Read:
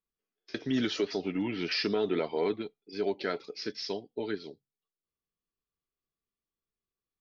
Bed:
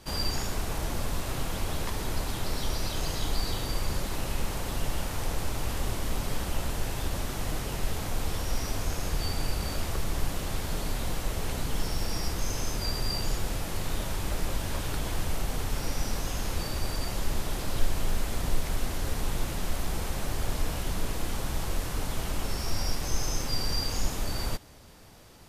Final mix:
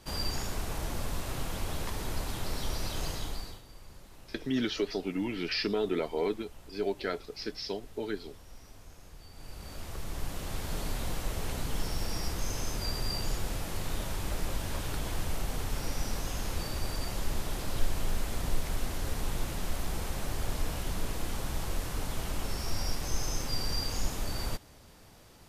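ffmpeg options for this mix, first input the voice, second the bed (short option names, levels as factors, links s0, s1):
-filter_complex "[0:a]adelay=3800,volume=0.891[s0];[1:a]volume=5.31,afade=t=out:st=3.06:d=0.56:silence=0.133352,afade=t=in:st=9.31:d=1.49:silence=0.125893[s1];[s0][s1]amix=inputs=2:normalize=0"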